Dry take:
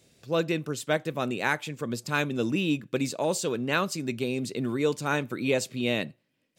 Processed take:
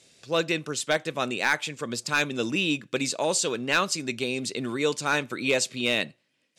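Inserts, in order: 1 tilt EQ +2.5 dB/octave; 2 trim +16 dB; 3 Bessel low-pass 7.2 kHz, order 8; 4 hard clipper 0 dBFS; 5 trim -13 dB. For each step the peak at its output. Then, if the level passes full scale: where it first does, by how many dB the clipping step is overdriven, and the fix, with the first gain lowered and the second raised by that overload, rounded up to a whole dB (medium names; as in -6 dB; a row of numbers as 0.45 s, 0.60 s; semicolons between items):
-8.0 dBFS, +8.0 dBFS, +7.5 dBFS, 0.0 dBFS, -13.0 dBFS; step 2, 7.5 dB; step 2 +8 dB, step 5 -5 dB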